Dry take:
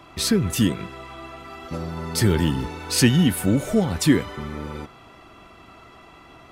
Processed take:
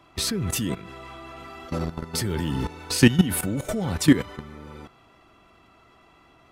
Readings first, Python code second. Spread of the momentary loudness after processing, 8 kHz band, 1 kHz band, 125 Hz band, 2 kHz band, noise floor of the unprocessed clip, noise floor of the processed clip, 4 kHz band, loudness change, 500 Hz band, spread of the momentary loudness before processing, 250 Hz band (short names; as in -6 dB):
22 LU, -2.0 dB, -3.0 dB, -3.5 dB, -1.0 dB, -48 dBFS, -56 dBFS, -2.5 dB, -2.5 dB, -4.0 dB, 19 LU, -2.5 dB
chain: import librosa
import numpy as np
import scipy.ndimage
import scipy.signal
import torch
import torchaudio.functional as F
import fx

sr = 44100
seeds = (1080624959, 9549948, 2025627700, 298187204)

y = fx.level_steps(x, sr, step_db=15)
y = y * 10.0 ** (4.0 / 20.0)